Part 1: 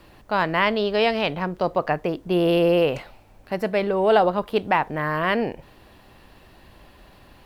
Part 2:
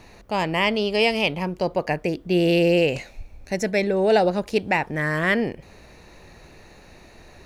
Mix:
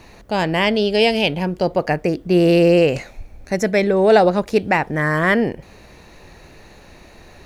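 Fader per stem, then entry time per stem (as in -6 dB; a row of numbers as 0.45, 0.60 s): -4.0, +3.0 dB; 0.00, 0.00 s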